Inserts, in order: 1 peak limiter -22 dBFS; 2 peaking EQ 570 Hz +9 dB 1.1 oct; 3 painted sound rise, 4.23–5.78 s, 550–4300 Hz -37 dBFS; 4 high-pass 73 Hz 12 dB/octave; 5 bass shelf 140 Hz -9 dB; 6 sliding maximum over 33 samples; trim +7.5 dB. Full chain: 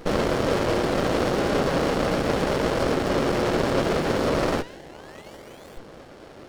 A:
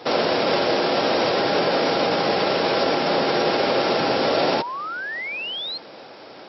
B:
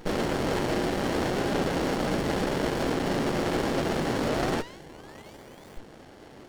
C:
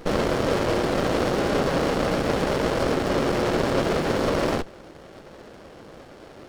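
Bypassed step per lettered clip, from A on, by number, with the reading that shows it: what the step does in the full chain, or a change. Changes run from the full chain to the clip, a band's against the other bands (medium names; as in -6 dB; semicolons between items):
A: 6, 125 Hz band -11.0 dB; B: 2, 500 Hz band -2.0 dB; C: 3, momentary loudness spread change -18 LU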